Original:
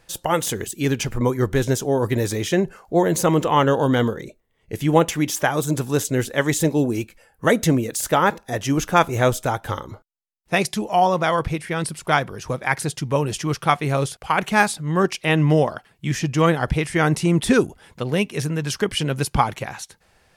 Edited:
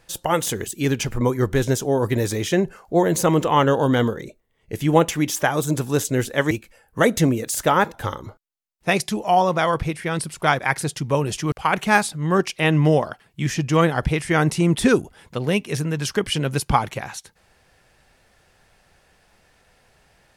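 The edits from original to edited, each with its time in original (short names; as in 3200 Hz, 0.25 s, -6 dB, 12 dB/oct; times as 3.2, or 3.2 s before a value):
6.51–6.97 cut
8.4–9.59 cut
12.24–12.6 cut
13.53–14.17 cut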